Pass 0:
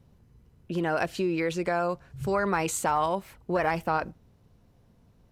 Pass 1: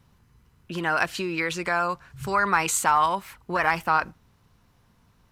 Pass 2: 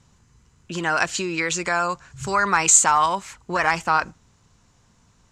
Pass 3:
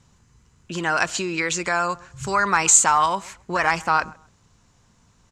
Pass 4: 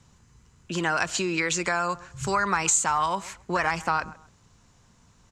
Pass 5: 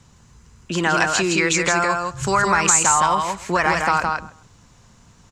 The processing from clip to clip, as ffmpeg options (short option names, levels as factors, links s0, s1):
-af "lowshelf=f=800:t=q:w=1.5:g=-8,volume=2.11"
-af "lowpass=f=7100:t=q:w=4.9,volume=1.26"
-filter_complex "[0:a]asplit=2[s0][s1];[s1]adelay=132,lowpass=f=1600:p=1,volume=0.0841,asplit=2[s2][s3];[s3]adelay=132,lowpass=f=1600:p=1,volume=0.25[s4];[s0][s2][s4]amix=inputs=3:normalize=0"
-filter_complex "[0:a]acrossover=split=170[s0][s1];[s1]acompressor=threshold=0.0794:ratio=3[s2];[s0][s2]amix=inputs=2:normalize=0"
-af "aecho=1:1:164:0.631,volume=2"